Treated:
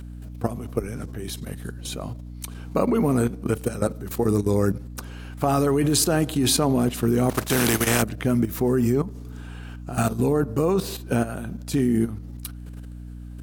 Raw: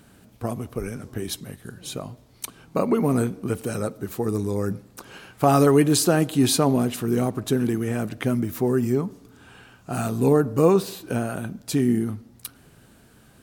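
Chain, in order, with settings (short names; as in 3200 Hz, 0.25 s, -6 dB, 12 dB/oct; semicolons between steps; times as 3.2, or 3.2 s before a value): 7.29–8.01 spectral contrast lowered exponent 0.5; level quantiser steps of 13 dB; hum 60 Hz, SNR 13 dB; gain +6 dB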